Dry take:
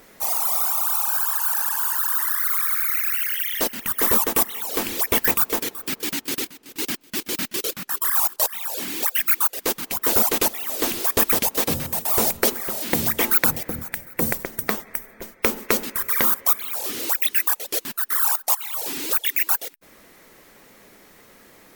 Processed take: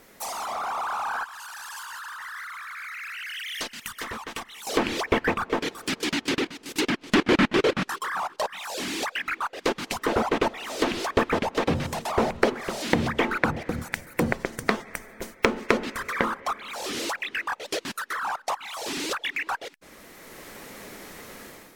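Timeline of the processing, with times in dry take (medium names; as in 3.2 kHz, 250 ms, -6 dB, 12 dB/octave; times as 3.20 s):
1.24–4.67 s: amplifier tone stack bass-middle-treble 5-5-5
7.02–7.89 s: square wave that keeps the level
whole clip: level rider; low-pass that closes with the level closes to 2.1 kHz, closed at -12.5 dBFS; trim -3 dB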